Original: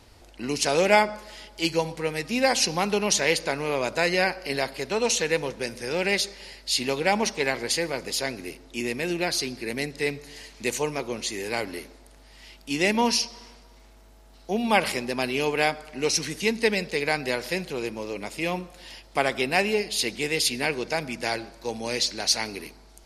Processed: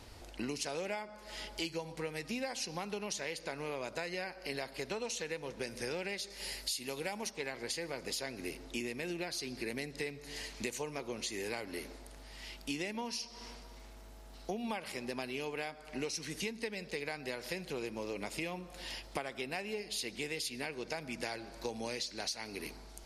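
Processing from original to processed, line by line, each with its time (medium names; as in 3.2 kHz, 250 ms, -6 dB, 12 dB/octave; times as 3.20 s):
6.30–7.31 s: peaking EQ 12 kHz +12.5 dB 1.3 oct
whole clip: compression 16:1, threshold -35 dBFS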